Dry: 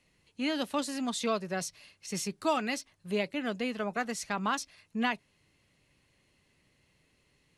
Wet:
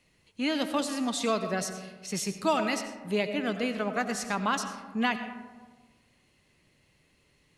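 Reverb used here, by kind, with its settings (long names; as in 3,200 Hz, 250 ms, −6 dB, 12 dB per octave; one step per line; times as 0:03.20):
comb and all-pass reverb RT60 1.4 s, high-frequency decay 0.35×, pre-delay 50 ms, DRR 8.5 dB
level +2.5 dB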